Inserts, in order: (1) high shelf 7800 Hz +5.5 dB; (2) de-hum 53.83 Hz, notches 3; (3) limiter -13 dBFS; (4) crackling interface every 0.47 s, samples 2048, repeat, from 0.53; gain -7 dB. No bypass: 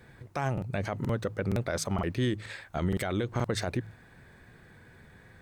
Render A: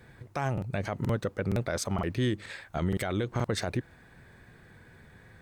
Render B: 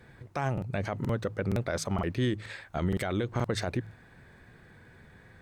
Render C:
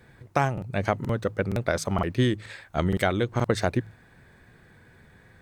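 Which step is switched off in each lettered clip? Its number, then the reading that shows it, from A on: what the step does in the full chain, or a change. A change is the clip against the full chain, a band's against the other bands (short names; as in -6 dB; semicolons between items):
2, momentary loudness spread change -2 LU; 1, 8 kHz band -2.5 dB; 3, mean gain reduction 2.0 dB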